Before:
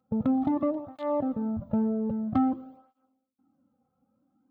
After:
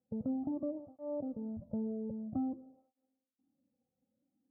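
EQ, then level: four-pole ladder low-pass 700 Hz, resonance 30%; -5.0 dB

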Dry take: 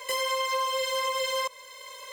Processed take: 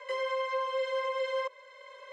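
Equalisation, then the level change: rippled Chebyshev high-pass 390 Hz, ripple 9 dB; tape spacing loss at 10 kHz 25 dB; +3.0 dB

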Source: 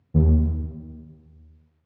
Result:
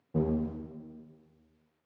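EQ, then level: high-pass 300 Hz 12 dB/octave; 0.0 dB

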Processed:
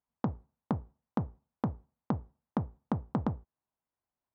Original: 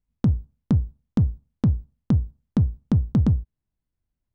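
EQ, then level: band-pass filter 900 Hz, Q 1.7; +6.0 dB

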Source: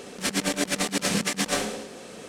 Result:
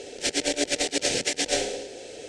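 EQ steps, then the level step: low-pass 8.2 kHz 24 dB/octave; static phaser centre 470 Hz, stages 4; +3.5 dB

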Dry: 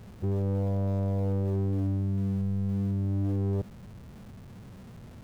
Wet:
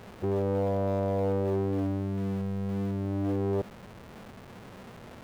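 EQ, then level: tone controls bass -14 dB, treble -6 dB; +8.5 dB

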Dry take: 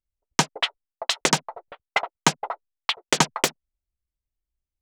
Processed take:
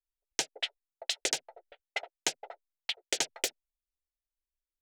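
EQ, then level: peaking EQ 130 Hz -11.5 dB 2.9 oct; static phaser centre 450 Hz, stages 4; -7.0 dB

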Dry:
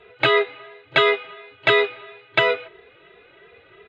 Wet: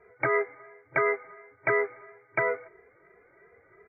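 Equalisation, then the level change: brick-wall FIR low-pass 2.4 kHz; -7.5 dB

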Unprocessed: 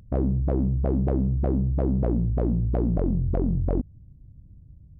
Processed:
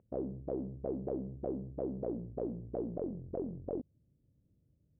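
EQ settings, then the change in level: band-pass filter 480 Hz, Q 1.6; distance through air 250 m; -5.5 dB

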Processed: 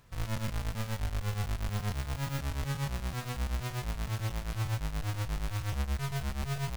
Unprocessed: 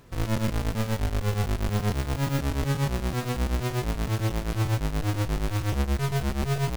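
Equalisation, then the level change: peaking EQ 340 Hz -10.5 dB 1.4 oct; -5.5 dB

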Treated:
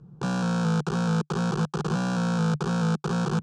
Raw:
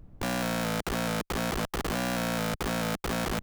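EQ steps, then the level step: cabinet simulation 120–7400 Hz, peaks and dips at 150 Hz +10 dB, 600 Hz +4 dB, 1.5 kHz +7 dB, 2.3 kHz +5 dB; bass shelf 420 Hz +8.5 dB; static phaser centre 410 Hz, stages 8; 0.0 dB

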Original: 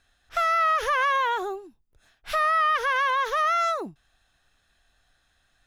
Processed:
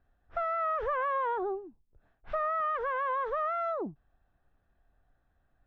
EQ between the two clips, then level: Bessel low-pass 680 Hz, order 2; 0.0 dB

